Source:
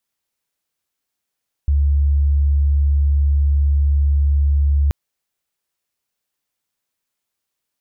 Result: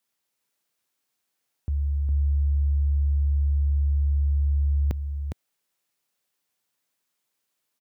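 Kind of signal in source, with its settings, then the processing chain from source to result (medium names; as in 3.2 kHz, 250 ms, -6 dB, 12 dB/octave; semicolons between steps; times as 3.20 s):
tone sine 71.3 Hz -12 dBFS 3.23 s
high-pass 120 Hz 12 dB/octave; hard clipper -15 dBFS; on a send: delay 409 ms -5 dB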